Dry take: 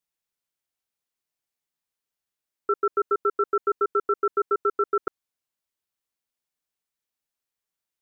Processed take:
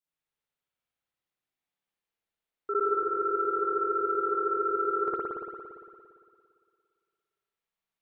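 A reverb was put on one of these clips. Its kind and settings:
spring reverb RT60 2.2 s, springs 57 ms, chirp 30 ms, DRR −9.5 dB
level −9 dB

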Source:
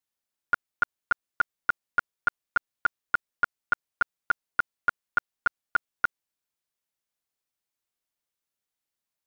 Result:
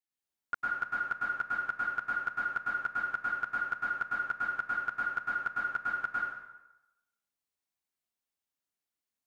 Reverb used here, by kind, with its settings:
dense smooth reverb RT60 0.96 s, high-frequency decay 0.8×, pre-delay 95 ms, DRR −5.5 dB
level −10 dB

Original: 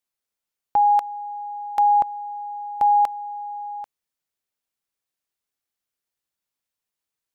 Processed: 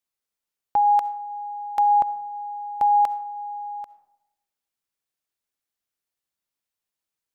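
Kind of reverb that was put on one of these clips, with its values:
comb and all-pass reverb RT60 0.89 s, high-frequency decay 0.4×, pre-delay 25 ms, DRR 15.5 dB
level −1.5 dB

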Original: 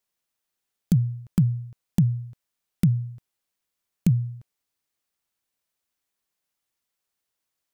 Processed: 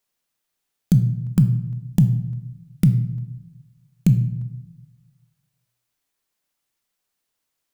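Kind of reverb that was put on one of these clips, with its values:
rectangular room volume 270 cubic metres, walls mixed, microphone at 0.41 metres
level +3.5 dB

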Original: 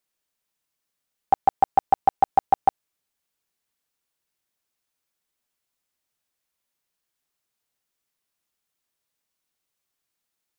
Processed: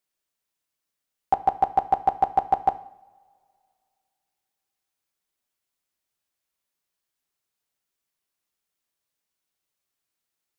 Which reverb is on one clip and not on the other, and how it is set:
coupled-rooms reverb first 0.62 s, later 2.5 s, from −21 dB, DRR 11 dB
level −2.5 dB

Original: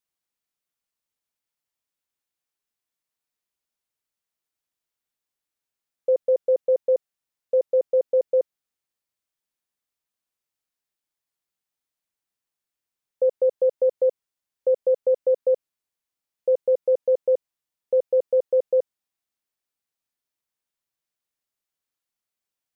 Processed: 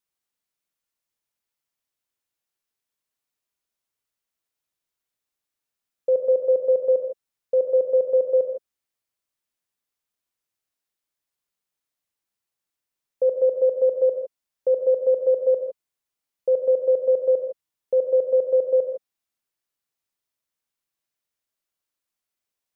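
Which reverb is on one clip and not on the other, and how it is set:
reverb whose tail is shaped and stops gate 180 ms rising, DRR 5 dB

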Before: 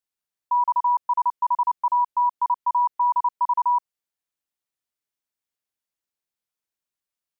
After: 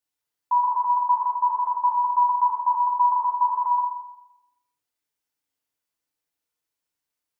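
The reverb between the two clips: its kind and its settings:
feedback delay network reverb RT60 0.87 s, low-frequency decay 0.8×, high-frequency decay 0.75×, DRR −2 dB

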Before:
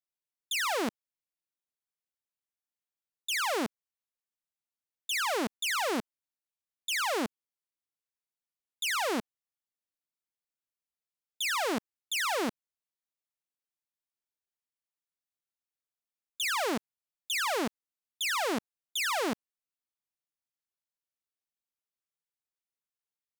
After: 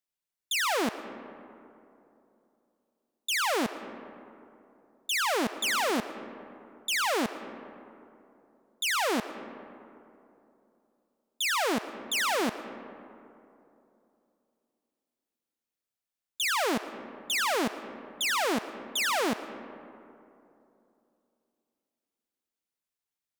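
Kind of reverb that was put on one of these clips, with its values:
comb and all-pass reverb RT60 2.9 s, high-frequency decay 0.4×, pre-delay 70 ms, DRR 12 dB
level +2.5 dB

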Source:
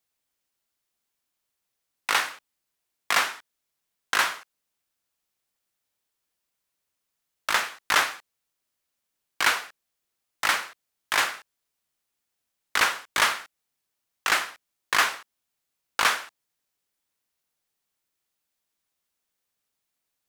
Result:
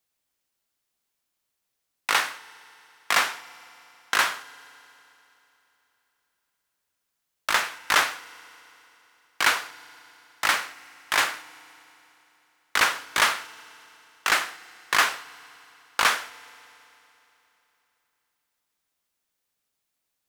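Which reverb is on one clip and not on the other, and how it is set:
feedback delay network reverb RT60 3.3 s, high-frequency decay 0.95×, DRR 18 dB
level +1 dB

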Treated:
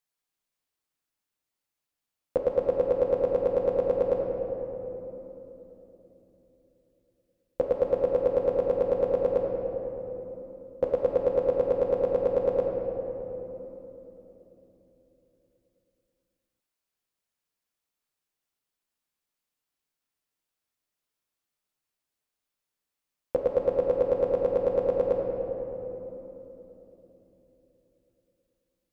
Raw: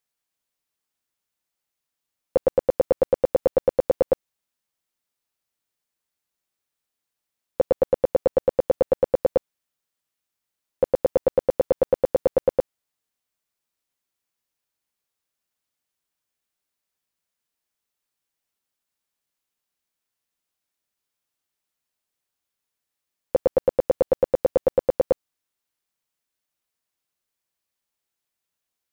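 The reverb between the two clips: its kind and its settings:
rectangular room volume 220 cubic metres, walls hard, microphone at 0.47 metres
level −5 dB

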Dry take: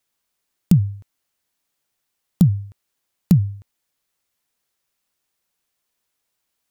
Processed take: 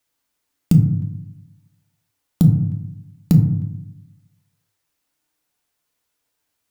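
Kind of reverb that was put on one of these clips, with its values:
feedback delay network reverb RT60 0.81 s, low-frequency decay 1.4×, high-frequency decay 0.35×, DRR 2.5 dB

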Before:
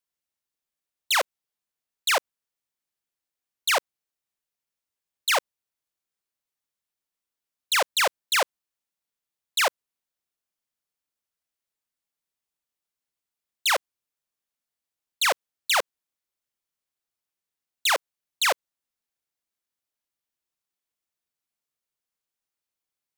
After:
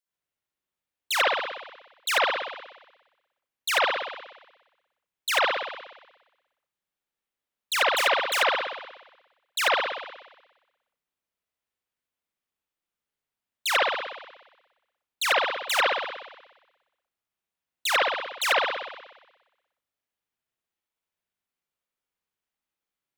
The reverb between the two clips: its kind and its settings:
spring reverb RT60 1.1 s, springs 60 ms, chirp 60 ms, DRR −6 dB
level −4.5 dB

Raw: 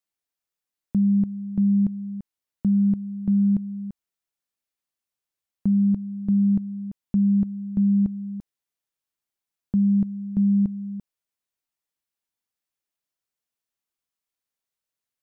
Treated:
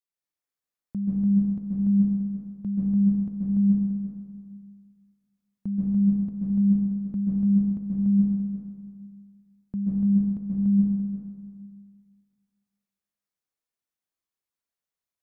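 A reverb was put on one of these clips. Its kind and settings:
dense smooth reverb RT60 1.9 s, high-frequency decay 0.45×, pre-delay 120 ms, DRR −5.5 dB
level −9 dB

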